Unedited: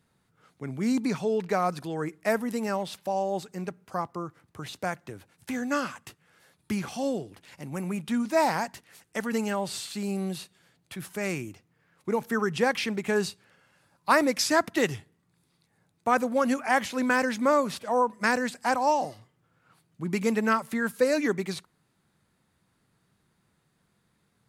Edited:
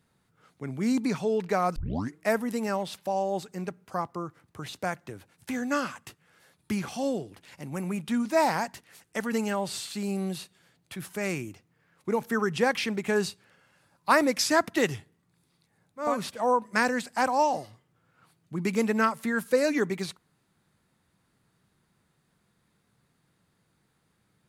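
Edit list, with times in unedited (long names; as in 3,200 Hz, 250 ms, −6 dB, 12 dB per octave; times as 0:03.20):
0:01.76: tape start 0.39 s
0:16.08–0:17.56: remove, crossfade 0.24 s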